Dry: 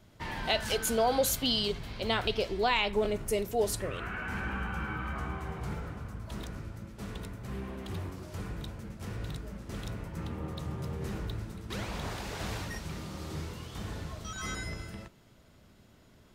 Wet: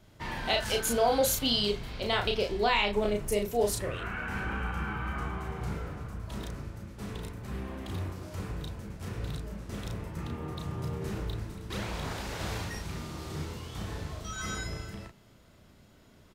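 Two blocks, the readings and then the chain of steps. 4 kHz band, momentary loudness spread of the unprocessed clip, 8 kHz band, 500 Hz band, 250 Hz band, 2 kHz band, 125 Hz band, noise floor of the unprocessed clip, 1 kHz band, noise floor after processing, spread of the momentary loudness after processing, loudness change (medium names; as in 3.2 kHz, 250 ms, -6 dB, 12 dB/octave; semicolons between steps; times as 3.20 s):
+1.5 dB, 14 LU, +1.5 dB, +1.5 dB, +1.0 dB, +1.5 dB, +1.5 dB, -59 dBFS, +1.5 dB, -58 dBFS, 14 LU, +1.5 dB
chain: doubling 34 ms -4 dB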